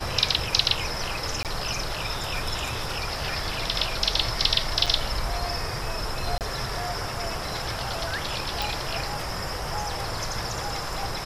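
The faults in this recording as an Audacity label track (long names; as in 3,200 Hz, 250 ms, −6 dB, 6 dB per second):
1.430000	1.450000	drop-out 18 ms
4.860000	4.870000	drop-out 5.7 ms
6.380000	6.410000	drop-out 28 ms
8.620000	8.620000	click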